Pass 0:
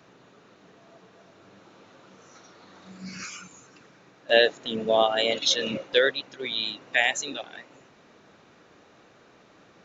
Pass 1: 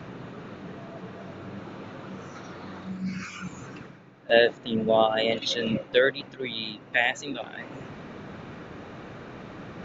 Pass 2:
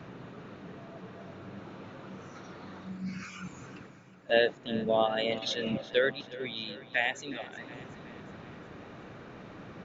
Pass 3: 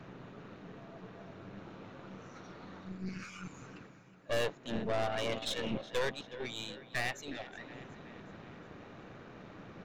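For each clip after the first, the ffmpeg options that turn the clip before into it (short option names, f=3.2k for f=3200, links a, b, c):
-af "areverse,acompressor=mode=upward:threshold=-31dB:ratio=2.5,areverse,bass=f=250:g=9,treble=f=4k:g=-12"
-af "aecho=1:1:367|734|1101|1468|1835:0.133|0.0773|0.0449|0.026|0.0151,volume=-5.5dB"
-af "aeval=exprs='(tanh(31.6*val(0)+0.8)-tanh(0.8))/31.6':c=same,volume=1dB"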